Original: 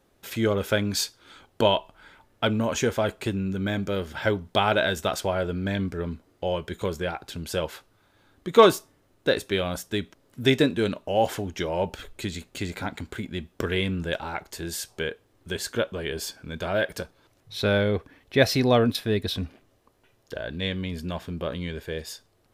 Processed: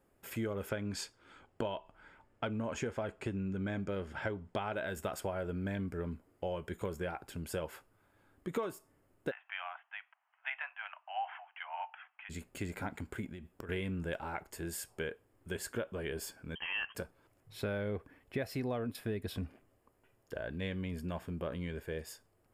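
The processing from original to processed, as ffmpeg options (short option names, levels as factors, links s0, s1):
-filter_complex "[0:a]asettb=1/sr,asplit=3[s0][s1][s2];[s0]atrim=end=0.694[s3];[s1]atrim=start=0.69:end=4.73,asetpts=PTS-STARTPTS,afade=t=in:d=0.004:c=qsin,afade=t=out:st=4.036:d=0.004:c=qsin,lowpass=6800[s4];[s2]atrim=start=4.726[s5];[s3][s4]acrossfade=d=0.004:c1=hsin:c2=qsin[s6];[s6][s5]acrossfade=d=0.004:c1=qsin:c2=hsin,asplit=3[s7][s8][s9];[s7]afade=t=out:st=9.3:d=0.02[s10];[s8]asuperpass=centerf=1500:order=20:qfactor=0.62,afade=t=in:st=9.3:d=0.02,afade=t=out:st=12.29:d=0.02[s11];[s9]afade=t=in:st=12.29:d=0.02[s12];[s10][s11][s12]amix=inputs=3:normalize=0,asettb=1/sr,asplit=3[s13][s14][s15];[s13]atrim=end=13.294[s16];[s14]atrim=start=13.29:end=13.69,asetpts=PTS-STARTPTS,afade=t=in:d=0.004:c=qsin,afade=t=out:st=0.396:d=0.004:c=qsin,acompressor=threshold=0.0178:ratio=16:attack=3.2:release=140:knee=1:detection=peak[s17];[s15]atrim=start=13.686[s18];[s16][s17]acrossfade=d=0.004:c1=hsin:c2=qsin[s19];[s19][s18]acrossfade=d=0.004:c1=qsin:c2=hsin,asettb=1/sr,asplit=3[s20][s21][s22];[s20]atrim=end=16.554[s23];[s21]atrim=start=16.55:end=16.95,asetpts=PTS-STARTPTS,afade=t=in:d=0.004:c=qsin,afade=t=out:st=0.396:d=0.004:c=qsin,lowpass=f=2800:t=q:w=0.5098,lowpass=f=2800:t=q:w=0.6013,lowpass=f=2800:t=q:w=0.9,lowpass=f=2800:t=q:w=2.563,afreqshift=-3300[s24];[s22]atrim=start=16.946[s25];[s23][s24]acrossfade=d=0.004:c1=hsin:c2=qsin[s26];[s26][s25]acrossfade=d=0.004:c1=qsin:c2=hsin,equalizer=f=3900:t=o:w=0.61:g=-12.5,bandreject=f=6000:w=5.6,acompressor=threshold=0.0501:ratio=16,volume=0.473"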